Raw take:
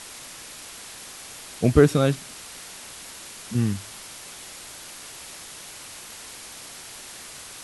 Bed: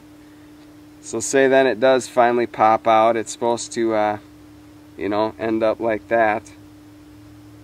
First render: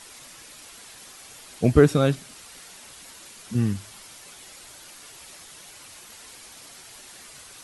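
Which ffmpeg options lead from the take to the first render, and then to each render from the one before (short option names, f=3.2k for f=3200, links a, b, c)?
-af "afftdn=nr=7:nf=-42"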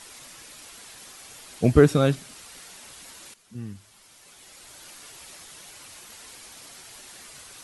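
-filter_complex "[0:a]asplit=2[a][b];[a]atrim=end=3.34,asetpts=PTS-STARTPTS,afade=t=out:st=3.336:d=0.004:c=hsin:silence=0.188365[c];[b]atrim=start=3.34,asetpts=PTS-STARTPTS,afade=t=in:d=1.53:c=qua:silence=0.188365[d];[c][d]concat=n=2:v=0:a=1"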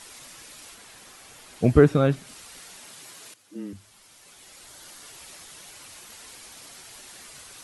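-filter_complex "[0:a]asettb=1/sr,asplit=3[a][b][c];[a]atrim=end=0.744[d];[b]atrim=start=0.74:end=2.27,asetpts=PTS-STARTPTS,afade=t=in:d=0.004:c=qsin,afade=t=out:st=1.526:d=0.004:c=qsin,acrossover=split=2700[e][f];[f]acompressor=threshold=-46dB:ratio=4:attack=1:release=60[g];[e][g]amix=inputs=2:normalize=0[h];[c]atrim=start=2.266[i];[d][h]acrossfade=d=0.004:c1=hsin:c2=qsin[j];[j][i]acrossfade=d=0.004:c1=qsin:c2=hsin,asettb=1/sr,asplit=3[k][l][m];[k]atrim=end=2.864[n];[l]atrim=start=2.86:end=3.73,asetpts=PTS-STARTPTS,afade=t=in:d=0.004:c=qsin,afade=t=out:st=0.866:d=0.004:c=qsin,afreqshift=96[o];[m]atrim=start=3.726[p];[n][o]acrossfade=d=0.004:c1=hsin:c2=qsin[q];[q][p]acrossfade=d=0.004:c1=qsin:c2=hsin,asettb=1/sr,asplit=3[r][s][t];[r]atrim=end=4.664[u];[s]atrim=start=4.66:end=5.08,asetpts=PTS-STARTPTS,afade=t=in:d=0.004:c=qsin,afade=t=out:st=0.416:d=0.004:c=qsin,equalizer=f=2.5k:w=8:g=-6.5[v];[t]atrim=start=5.076[w];[u][v]acrossfade=d=0.004:c1=hsin:c2=qsin[x];[x][w]acrossfade=d=0.004:c1=qsin:c2=hsin"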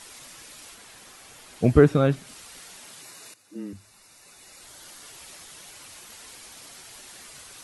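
-filter_complex "[0:a]asettb=1/sr,asplit=3[a][b][c];[a]atrim=end=3.014[d];[b]atrim=start=3.01:end=4.62,asetpts=PTS-STARTPTS,afade=t=in:d=0.004:c=qsin,afade=t=out:st=1.606:d=0.004:c=qsin,asuperstop=centerf=3200:order=8:qfactor=7.3[e];[c]atrim=start=4.616[f];[d][e]acrossfade=d=0.004:c1=hsin:c2=qsin[g];[g][f]acrossfade=d=0.004:c1=qsin:c2=hsin"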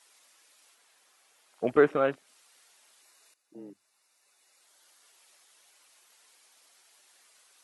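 -af "highpass=490,afwtdn=0.01"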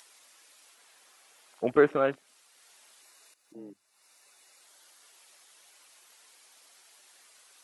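-af "acompressor=mode=upward:threshold=-52dB:ratio=2.5"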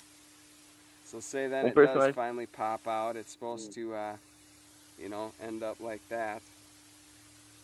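-filter_complex "[1:a]volume=-18.5dB[a];[0:a][a]amix=inputs=2:normalize=0"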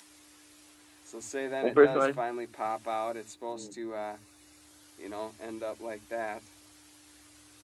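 -filter_complex "[0:a]asplit=2[a][b];[b]adelay=14,volume=-11dB[c];[a][c]amix=inputs=2:normalize=0,acrossover=split=170[d][e];[d]adelay=70[f];[f][e]amix=inputs=2:normalize=0"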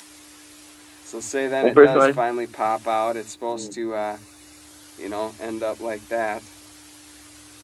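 -af "volume=10.5dB,alimiter=limit=-1dB:level=0:latency=1"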